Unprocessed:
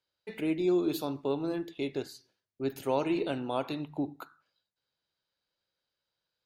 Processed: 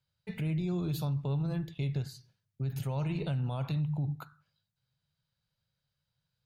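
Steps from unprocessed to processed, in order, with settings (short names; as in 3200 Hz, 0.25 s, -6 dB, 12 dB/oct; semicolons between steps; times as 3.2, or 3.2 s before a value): resonant low shelf 210 Hz +13.5 dB, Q 3; limiter -24.5 dBFS, peak gain reduction 10.5 dB; gain -1.5 dB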